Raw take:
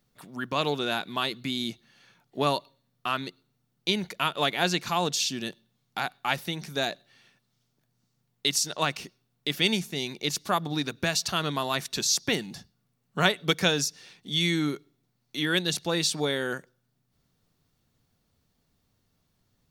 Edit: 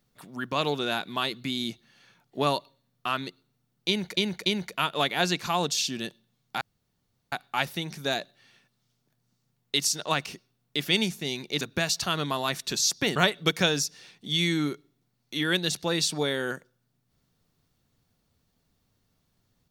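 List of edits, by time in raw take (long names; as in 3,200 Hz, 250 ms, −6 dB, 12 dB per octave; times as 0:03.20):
0:03.88–0:04.17: repeat, 3 plays
0:06.03: splice in room tone 0.71 s
0:10.32–0:10.87: remove
0:12.42–0:13.18: remove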